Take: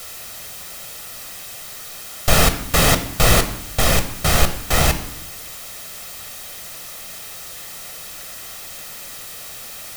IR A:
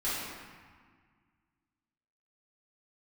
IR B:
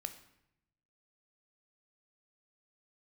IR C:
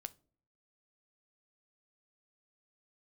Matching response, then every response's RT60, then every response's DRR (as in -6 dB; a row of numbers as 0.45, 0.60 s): B; 1.7 s, 0.80 s, not exponential; -11.5, 8.0, 13.0 dB